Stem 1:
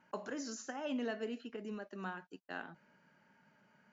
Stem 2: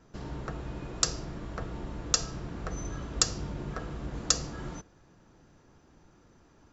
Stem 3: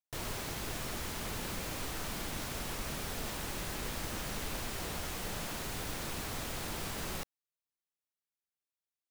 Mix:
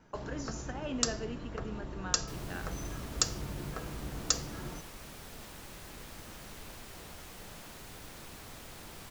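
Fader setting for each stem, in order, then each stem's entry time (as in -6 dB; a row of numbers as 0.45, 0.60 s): +0.5, -3.5, -9.0 dB; 0.00, 0.00, 2.15 s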